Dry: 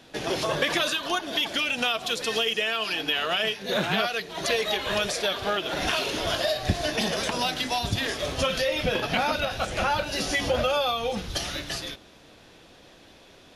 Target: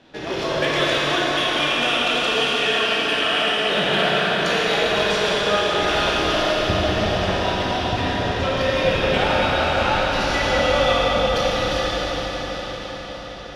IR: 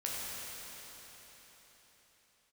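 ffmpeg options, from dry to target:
-filter_complex "[0:a]asettb=1/sr,asplit=3[a][b][c];[a]atrim=end=6.424[d];[b]atrim=start=6.42:end=8.61,asetpts=PTS-STARTPTS,afade=t=in:d=0.004:c=qsin,afade=t=out:st=2.186:d=0.004:c=qsin,highshelf=f=2.6k:g=-7.5[e];[c]atrim=start=8.606[f];[d][e]acrossfade=d=0.004:c1=hsin:c2=qsin[g];[g][f]acrossfade=d=0.004:c1=qsin:c2=hsin,adynamicsmooth=sensitivity=1.5:basefreq=4.4k[h];[1:a]atrim=start_sample=2205,asetrate=27342,aresample=44100[i];[h][i]afir=irnorm=-1:irlink=0"

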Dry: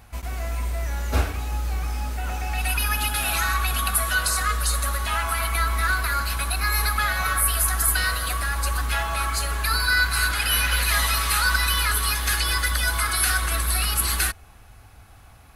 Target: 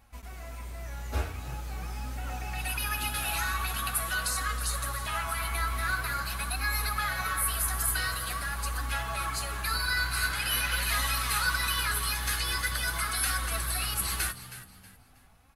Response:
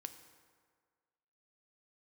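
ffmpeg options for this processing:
-filter_complex "[0:a]dynaudnorm=f=430:g=7:m=4.5dB,flanger=delay=3.6:depth=9.6:regen=42:speed=0.45:shape=sinusoidal,asplit=4[a][b][c][d];[b]adelay=319,afreqshift=64,volume=-14dB[e];[c]adelay=638,afreqshift=128,volume=-24.2dB[f];[d]adelay=957,afreqshift=192,volume=-34.3dB[g];[a][e][f][g]amix=inputs=4:normalize=0,volume=-7dB"

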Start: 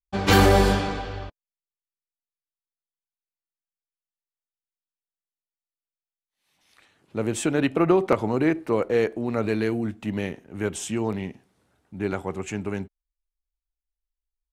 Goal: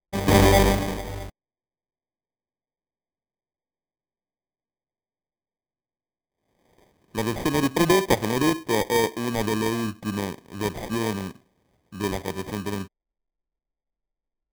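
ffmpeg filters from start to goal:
-af "acrusher=samples=32:mix=1:aa=0.000001"

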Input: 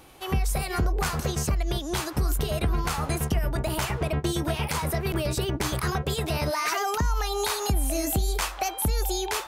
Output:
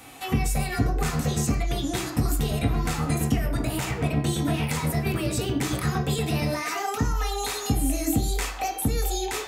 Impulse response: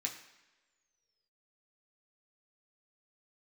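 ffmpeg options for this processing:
-filter_complex "[0:a]acrossover=split=460[a][b];[b]acompressor=threshold=-43dB:ratio=2[c];[a][c]amix=inputs=2:normalize=0[d];[1:a]atrim=start_sample=2205,afade=t=out:st=0.2:d=0.01,atrim=end_sample=9261[e];[d][e]afir=irnorm=-1:irlink=0,volume=7dB"

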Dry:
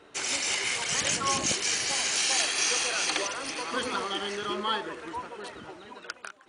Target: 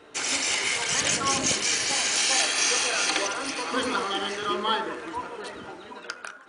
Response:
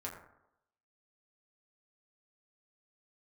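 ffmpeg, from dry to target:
-filter_complex "[0:a]asplit=2[a][b];[b]lowshelf=f=150:t=q:w=1.5:g=-7[c];[1:a]atrim=start_sample=2205[d];[c][d]afir=irnorm=-1:irlink=0,volume=-3dB[e];[a][e]amix=inputs=2:normalize=0"

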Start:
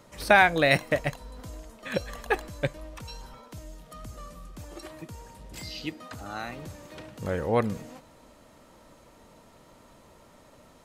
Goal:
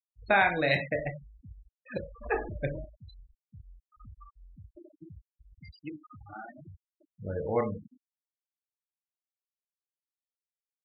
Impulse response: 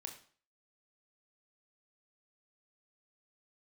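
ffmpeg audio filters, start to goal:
-filter_complex "[0:a]asettb=1/sr,asplit=3[a][b][c];[a]atrim=end=2.214[d];[b]atrim=start=2.21:end=2.85,asetpts=PTS-STARTPTS,afade=t=in:d=0.004:c=qsin,afade=t=out:st=0.636:d=0.004:c=qsin,aeval=exprs='val(0)+0.5*0.0335*sgn(val(0))':c=same[e];[c]atrim=start=2.846[f];[d][e]acrossfade=d=0.004:c1=hsin:c2=qsin[g];[g][f]acrossfade=d=0.004:c1=qsin:c2=hsin[h];[1:a]atrim=start_sample=2205,asetrate=48510,aresample=44100[i];[h][i]afir=irnorm=-1:irlink=0,afftfilt=real='re*gte(hypot(re,im),0.0316)':imag='im*gte(hypot(re,im),0.0316)':win_size=1024:overlap=0.75"

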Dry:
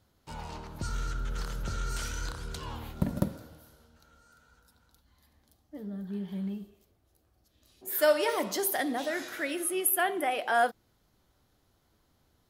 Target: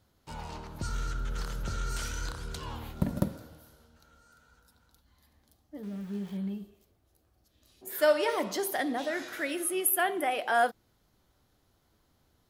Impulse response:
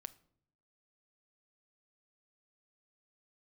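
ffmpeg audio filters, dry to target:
-filter_complex "[0:a]asettb=1/sr,asplit=3[a][b][c];[a]atrim=end=5.834[d];[b]atrim=start=5.83:end=6.37,asetpts=PTS-STARTPTS,afade=t=in:d=0.004:c=qsin,afade=t=out:st=0.536:d=0.004:c=qsin,aeval=exprs='val(0)*gte(abs(val(0)),0.00376)':c=same[e];[c]atrim=start=6.366[f];[d][e]acrossfade=d=0.004:c1=hsin:c2=qsin[g];[g][f]acrossfade=d=0.004:c1=qsin:c2=hsin,asettb=1/sr,asplit=3[h][i][j];[h]atrim=end=7.884[k];[i]atrim=start=7.88:end=9.33,asetpts=PTS-STARTPTS,afade=t=in:d=0.004:c=qsin,afade=t=out:st=1.446:d=0.004:c=qsin,highshelf=f=7.6k:g=-8[l];[j]atrim=start=9.326[m];[k][l]acrossfade=d=0.004:c1=hsin:c2=qsin[n];[n][m]acrossfade=d=0.004:c1=qsin:c2=hsin"

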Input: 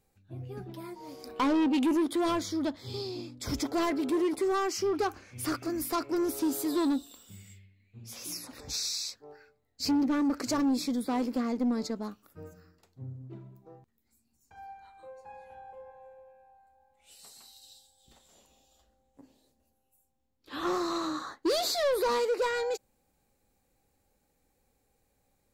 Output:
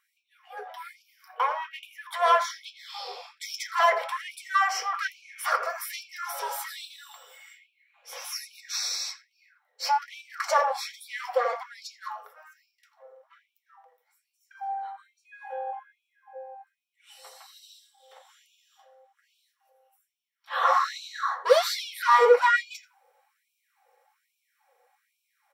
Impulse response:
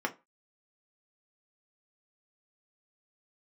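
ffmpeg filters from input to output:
-filter_complex "[0:a]asettb=1/sr,asplit=3[a][b][c];[a]atrim=end=1.024[d];[b]atrim=start=1.02:end=2.13,asetpts=PTS-STARTPTS,afade=t=in:d=0.004:c=qsin,afade=t=out:st=1.106:d=0.004:c=qsin,equalizer=f=500:t=o:w=1:g=-11,equalizer=f=1k:t=o:w=1:g=-5,equalizer=f=2k:t=o:w=1:g=-5,equalizer=f=4k:t=o:w=1:g=-10,equalizer=f=8k:t=o:w=1:g=-11[e];[c]atrim=start=2.126[f];[d][e]acrossfade=d=0.004:c1=hsin:c2=qsin[g];[g][f]acrossfade=d=0.004:c1=qsin:c2=hsin,asplit=2[h][i];[i]adelay=84,lowpass=f=940:p=1,volume=-6dB,asplit=2[j][k];[k]adelay=84,lowpass=f=940:p=1,volume=0.25,asplit=2[l][m];[m]adelay=84,lowpass=f=940:p=1,volume=0.25[n];[h][j][l][n]amix=inputs=4:normalize=0[o];[1:a]atrim=start_sample=2205[p];[o][p]afir=irnorm=-1:irlink=0,afftfilt=real='re*gte(b*sr/1024,420*pow(2300/420,0.5+0.5*sin(2*PI*1.2*pts/sr)))':imag='im*gte(b*sr/1024,420*pow(2300/420,0.5+0.5*sin(2*PI*1.2*pts/sr)))':win_size=1024:overlap=0.75,volume=5dB"

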